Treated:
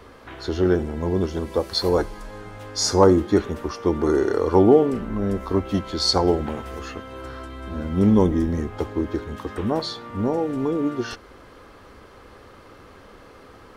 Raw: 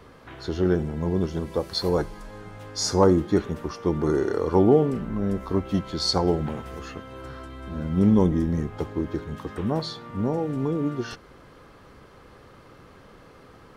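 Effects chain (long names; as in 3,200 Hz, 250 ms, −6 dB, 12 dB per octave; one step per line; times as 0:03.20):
parametric band 150 Hz −11 dB 0.51 octaves
level +4 dB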